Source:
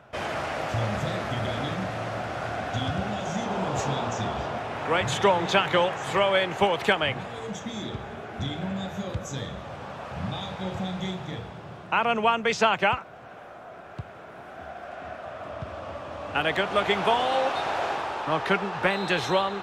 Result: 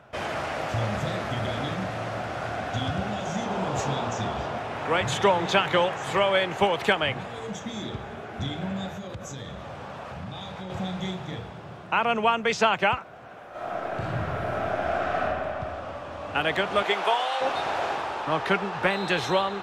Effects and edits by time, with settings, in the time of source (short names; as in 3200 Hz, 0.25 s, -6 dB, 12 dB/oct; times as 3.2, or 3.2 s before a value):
8.92–10.7 compressor 4:1, threshold -33 dBFS
13.5–15.2 reverb throw, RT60 2.5 s, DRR -12 dB
16.82–17.4 HPF 270 Hz -> 890 Hz